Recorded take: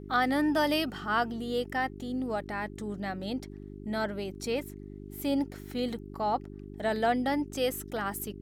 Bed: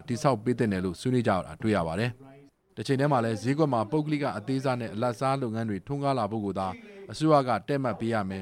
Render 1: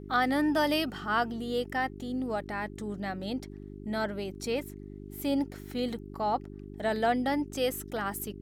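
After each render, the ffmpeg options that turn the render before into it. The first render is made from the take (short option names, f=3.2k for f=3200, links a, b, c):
-af anull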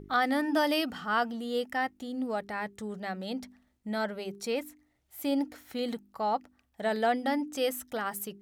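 -af "bandreject=f=50:t=h:w=4,bandreject=f=100:t=h:w=4,bandreject=f=150:t=h:w=4,bandreject=f=200:t=h:w=4,bandreject=f=250:t=h:w=4,bandreject=f=300:t=h:w=4,bandreject=f=350:t=h:w=4,bandreject=f=400:t=h:w=4"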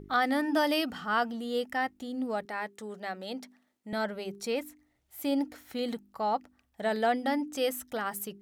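-filter_complex "[0:a]asettb=1/sr,asplit=3[a][b][c];[a]atrim=end=2.454[d];[b]atrim=start=2.45:end=3.93,asetpts=PTS-STARTPTS,afade=t=in:d=0.004:c=qsin,afade=t=out:st=1.476:d=0.004:c=qsin,highpass=280[e];[c]atrim=start=3.926[f];[d][e]acrossfade=d=0.004:c1=hsin:c2=qsin[g];[g][f]acrossfade=d=0.004:c1=qsin:c2=hsin"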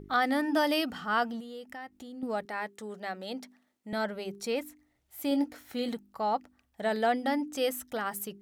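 -filter_complex "[0:a]asettb=1/sr,asplit=3[a][b][c];[a]atrim=end=1.404[d];[b]atrim=start=1.4:end=2.23,asetpts=PTS-STARTPTS,afade=t=in:d=0.004:c=qsin,afade=t=out:st=0.826:d=0.004:c=qsin,acompressor=threshold=-43dB:ratio=3:attack=3.2:release=140:knee=1:detection=peak[e];[c]atrim=start=2.226[f];[d][e]acrossfade=d=0.004:c1=hsin:c2=qsin[g];[g][f]acrossfade=d=0.004:c1=qsin:c2=hsin,asettb=1/sr,asplit=3[h][i][j];[h]atrim=end=5.294[k];[i]atrim=start=5.29:end=5.89,asetpts=PTS-STARTPTS,afade=t=in:d=0.004:c=qsin,afade=t=out:st=0.596:d=0.004:c=qsin,asplit=2[l][m];[m]adelay=21,volume=-9.5dB[n];[l][n]amix=inputs=2:normalize=0,atrim=end_sample=26460[o];[j]atrim=start=5.886[p];[k][o]acrossfade=d=0.004:c1=hsin:c2=qsin[q];[q][p]acrossfade=d=0.004:c1=qsin:c2=hsin"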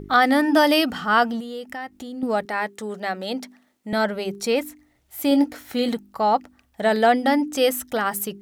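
-af "volume=10dB"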